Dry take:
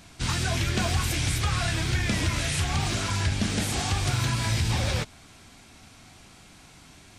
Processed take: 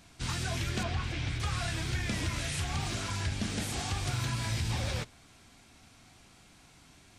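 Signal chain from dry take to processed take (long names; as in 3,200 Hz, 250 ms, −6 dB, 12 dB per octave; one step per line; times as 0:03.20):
0:00.83–0:01.40: low-pass filter 3,700 Hz 12 dB per octave
on a send: convolution reverb RT60 0.50 s, pre-delay 3 ms, DRR 22 dB
on the sum: level −7 dB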